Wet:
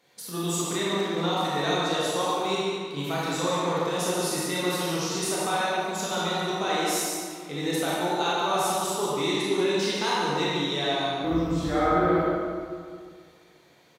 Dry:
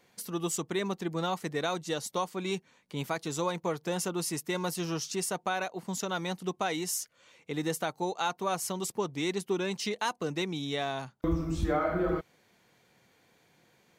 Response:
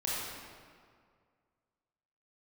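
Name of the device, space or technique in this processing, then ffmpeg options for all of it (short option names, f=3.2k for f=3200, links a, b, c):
PA in a hall: -filter_complex "[0:a]highpass=f=160:p=1,equalizer=f=3.8k:t=o:w=0.36:g=5,aecho=1:1:143:0.447[a];[1:a]atrim=start_sample=2205[b];[a][b]afir=irnorm=-1:irlink=0"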